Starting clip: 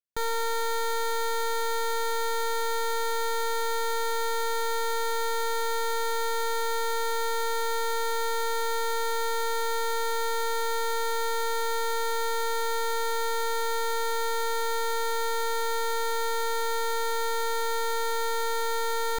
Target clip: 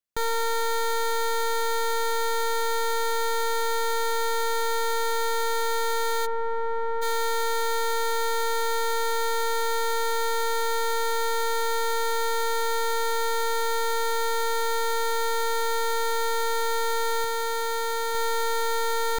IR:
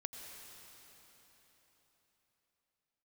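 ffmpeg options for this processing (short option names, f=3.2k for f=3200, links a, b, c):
-filter_complex "[0:a]asplit=3[a][b][c];[a]afade=t=out:st=6.25:d=0.02[d];[b]lowpass=1.2k,afade=t=in:st=6.25:d=0.02,afade=t=out:st=7.01:d=0.02[e];[c]afade=t=in:st=7.01:d=0.02[f];[d][e][f]amix=inputs=3:normalize=0,asettb=1/sr,asplit=3[g][h][i];[g]atrim=end=17.244[j];[h]atrim=start=17.24:end=18.15,asetpts=PTS-STARTPTS,afade=t=in:d=0.004:c=qsin,afade=t=out:st=0.906:d=0.004:c=qsin,acrusher=bits=7:dc=4:mix=0:aa=0.000001[k];[i]atrim=start=18.146[l];[j][k]acrossfade=d=0.004:c1=hsin:c2=qsin[m];[m][l]acrossfade=d=0.004:c1=qsin:c2=hsin,volume=2.5dB"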